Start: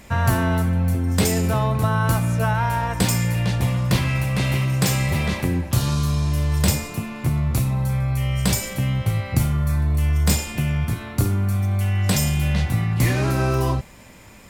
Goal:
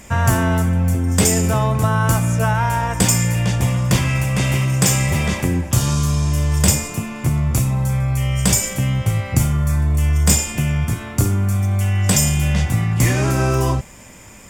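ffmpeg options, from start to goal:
-af "equalizer=f=7.2k:w=1.9:g=8,bandreject=f=4.1k:w=6.2,volume=3dB"

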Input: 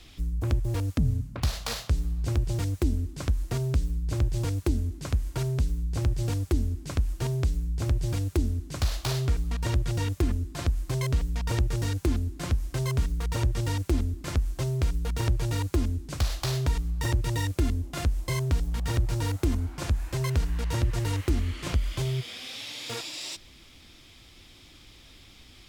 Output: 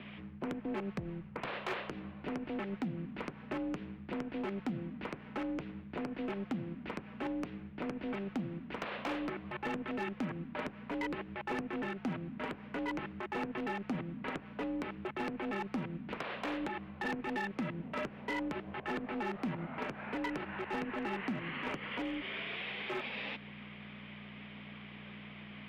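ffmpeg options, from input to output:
-af "aeval=exprs='val(0)+0.0126*(sin(2*PI*60*n/s)+sin(2*PI*2*60*n/s)/2+sin(2*PI*3*60*n/s)/3+sin(2*PI*4*60*n/s)/4+sin(2*PI*5*60*n/s)/5)':c=same,highpass=f=330:t=q:w=0.5412,highpass=f=330:t=q:w=1.307,lowpass=f=2.8k:t=q:w=0.5176,lowpass=f=2.8k:t=q:w=0.7071,lowpass=f=2.8k:t=q:w=1.932,afreqshift=-94,volume=31.5dB,asoftclip=hard,volume=-31.5dB,alimiter=level_in=14dB:limit=-24dB:level=0:latency=1:release=105,volume=-14dB,volume=7dB"

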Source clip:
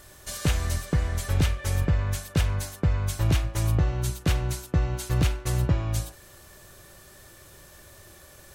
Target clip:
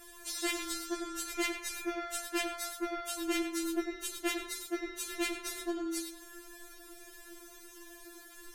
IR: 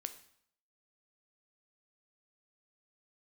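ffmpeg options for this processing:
-filter_complex "[0:a]asplit=2[a][b];[1:a]atrim=start_sample=2205,highshelf=f=2.4k:g=-10.5,adelay=100[c];[b][c]afir=irnorm=-1:irlink=0,volume=-1.5dB[d];[a][d]amix=inputs=2:normalize=0,afftfilt=real='re*4*eq(mod(b,16),0)':imag='im*4*eq(mod(b,16),0)':win_size=2048:overlap=0.75"

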